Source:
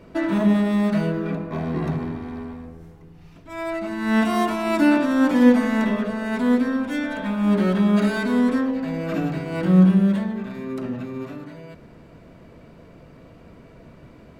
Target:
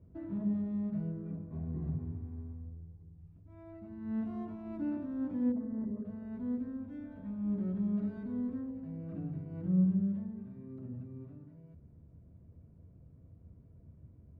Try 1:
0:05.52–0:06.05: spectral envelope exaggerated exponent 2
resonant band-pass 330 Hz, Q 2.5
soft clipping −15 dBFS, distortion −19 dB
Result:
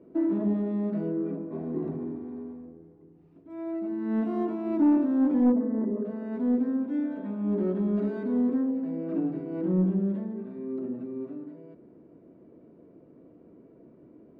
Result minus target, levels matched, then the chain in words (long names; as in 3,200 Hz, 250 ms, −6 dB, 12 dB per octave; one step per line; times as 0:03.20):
125 Hz band −6.5 dB
0:05.52–0:06.05: spectral envelope exaggerated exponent 2
resonant band-pass 84 Hz, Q 2.5
soft clipping −15 dBFS, distortion −33 dB